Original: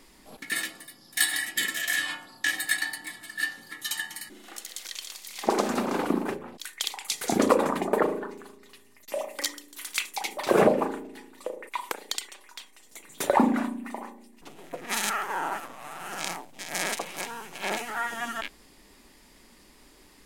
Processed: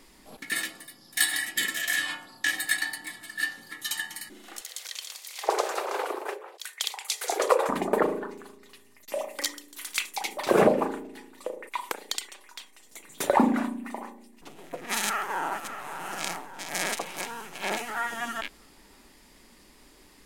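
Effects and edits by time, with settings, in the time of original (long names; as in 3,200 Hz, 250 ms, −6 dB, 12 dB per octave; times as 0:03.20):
0:04.61–0:07.69: Butterworth high-pass 400 Hz 48 dB per octave
0:15.06–0:15.88: delay throw 580 ms, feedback 55%, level −10 dB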